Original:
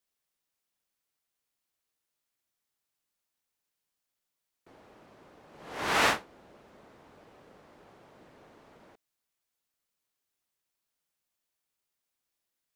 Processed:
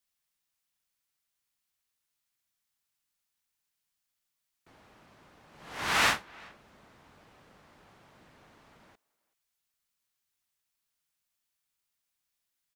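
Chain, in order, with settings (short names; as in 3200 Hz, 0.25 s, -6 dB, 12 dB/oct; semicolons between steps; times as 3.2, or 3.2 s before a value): bell 440 Hz -9 dB 1.9 oct; speakerphone echo 0.38 s, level -24 dB; gain +2 dB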